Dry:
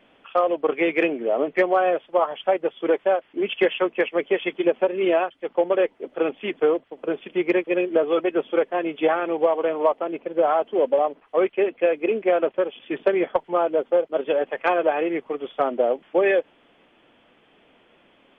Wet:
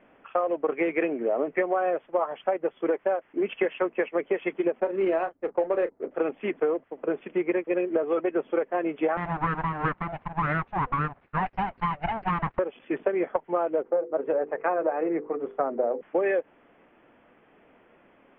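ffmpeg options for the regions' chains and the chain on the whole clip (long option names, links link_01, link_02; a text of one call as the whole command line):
ffmpeg -i in.wav -filter_complex "[0:a]asettb=1/sr,asplit=3[link_01][link_02][link_03];[link_01]atrim=end=4.804[link_04];[link_02]atrim=start=4.8:end=6.11,asetpts=PTS-STARTPTS,afade=type=in:duration=0.004:curve=qsin,afade=type=out:start_time=1.306:duration=0.004:curve=qsin,asplit=2[link_05][link_06];[link_06]adelay=31,volume=-12dB[link_07];[link_05][link_07]amix=inputs=2:normalize=0,atrim=end_sample=57771,adynamicsmooth=sensitivity=6:basefreq=580[link_08];[link_03]atrim=start=6.106[link_09];[link_04][link_08]acrossfade=duration=0.004:curve1=hsin:curve2=qsin[link_10];[link_10][link_09]acrossfade=duration=0.004:curve1=qsin:curve2=hsin,asettb=1/sr,asplit=3[link_11][link_12][link_13];[link_11]atrim=end=9.174[link_14];[link_12]atrim=start=9.17:end=12.59,asetpts=PTS-STARTPTS,afade=type=in:duration=0.004:curve=qsin,afade=type=out:start_time=3.416:duration=0.004:curve=qsin,aeval=exprs='abs(val(0))':channel_layout=same,highpass=frequency=51:poles=1[link_15];[link_13]atrim=start=12.586[link_16];[link_14][link_15]acrossfade=duration=0.004:curve1=hsin:curve2=qsin[link_17];[link_17][link_16]acrossfade=duration=0.004:curve1=qsin:curve2=hsin,asettb=1/sr,asplit=3[link_18][link_19][link_20];[link_18]atrim=end=13.824[link_21];[link_19]atrim=start=13.82:end=16.01,asetpts=PTS-STARTPTS,afade=type=in:duration=0.004:curve=qsin,afade=type=out:start_time=2.186:duration=0.004:curve=qsin,lowpass=1500,bandreject=frequency=50:width_type=h:width=6,bandreject=frequency=100:width_type=h:width=6,bandreject=frequency=150:width_type=h:width=6,bandreject=frequency=200:width_type=h:width=6,bandreject=frequency=250:width_type=h:width=6,bandreject=frequency=300:width_type=h:width=6,bandreject=frequency=350:width_type=h:width=6,bandreject=frequency=400:width_type=h:width=6,bandreject=frequency=450:width_type=h:width=6,bandreject=frequency=500:width_type=h:width=6[link_22];[link_20]atrim=start=16.006[link_23];[link_21][link_22]acrossfade=duration=0.004:curve1=hsin:curve2=qsin[link_24];[link_24][link_23]acrossfade=duration=0.004:curve1=qsin:curve2=hsin,lowpass=frequency=2200:width=0.5412,lowpass=frequency=2200:width=1.3066,acompressor=threshold=-22dB:ratio=4" out.wav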